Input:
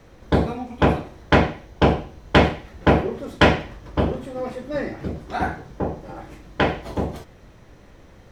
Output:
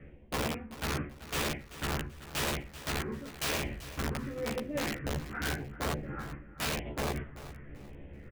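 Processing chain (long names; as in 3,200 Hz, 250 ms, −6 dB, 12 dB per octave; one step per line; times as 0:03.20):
adaptive Wiener filter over 9 samples
reversed playback
downward compressor 8 to 1, threshold −30 dBFS, peak gain reduction 20.5 dB
reversed playback
Butterworth low-pass 3,200 Hz 48 dB per octave
low-shelf EQ 160 Hz −2.5 dB
all-pass phaser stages 4, 0.91 Hz, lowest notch 610–1,300 Hz
dynamic equaliser 2,400 Hz, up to +5 dB, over −55 dBFS, Q 1.1
wrap-around overflow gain 28.5 dB
double-tracking delay 14 ms −2.5 dB
on a send: repeating echo 386 ms, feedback 31%, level −15 dB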